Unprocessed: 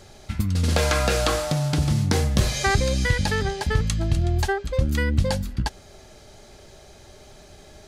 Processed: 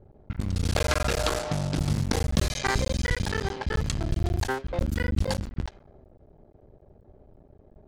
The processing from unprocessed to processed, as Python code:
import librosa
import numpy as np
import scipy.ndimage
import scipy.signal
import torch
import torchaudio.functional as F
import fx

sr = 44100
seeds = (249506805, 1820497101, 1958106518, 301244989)

y = fx.cycle_switch(x, sr, every=3, mode='muted')
y = fx.env_lowpass(y, sr, base_hz=440.0, full_db=-19.5)
y = y * 10.0 ** (-3.0 / 20.0)